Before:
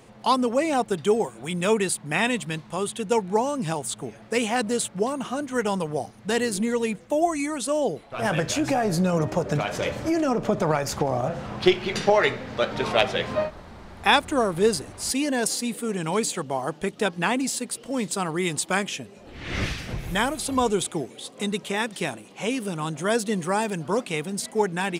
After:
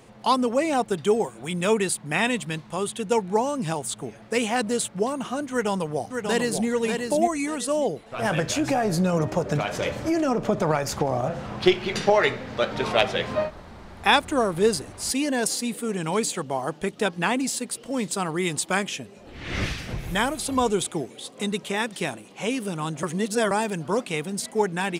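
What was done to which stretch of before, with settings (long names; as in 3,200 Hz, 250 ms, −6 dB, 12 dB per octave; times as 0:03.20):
0:05.51–0:06.68: delay throw 590 ms, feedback 25%, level −5 dB
0:23.03–0:23.51: reverse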